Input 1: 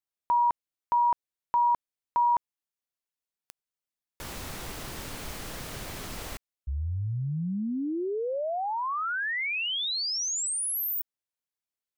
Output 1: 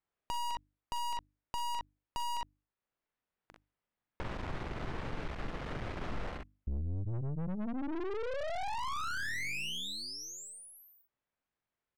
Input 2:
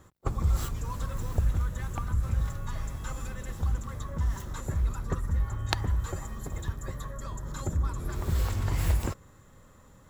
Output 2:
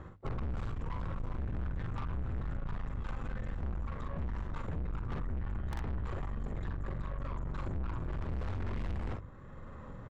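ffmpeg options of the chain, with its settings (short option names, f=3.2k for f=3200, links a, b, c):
-filter_complex "[0:a]lowpass=2k,bandreject=f=50:t=h:w=6,bandreject=f=100:t=h:w=6,bandreject=f=150:t=h:w=6,bandreject=f=200:t=h:w=6,bandreject=f=250:t=h:w=6,bandreject=f=300:t=h:w=6,asplit=2[a][b];[b]aecho=0:1:43|61:0.501|0.335[c];[a][c]amix=inputs=2:normalize=0,aeval=exprs='(tanh(89.1*val(0)+0.6)-tanh(0.6))/89.1':c=same,lowshelf=f=180:g=4,acompressor=threshold=-50dB:ratio=2:attack=11:release=577:detection=rms,volume=10.5dB"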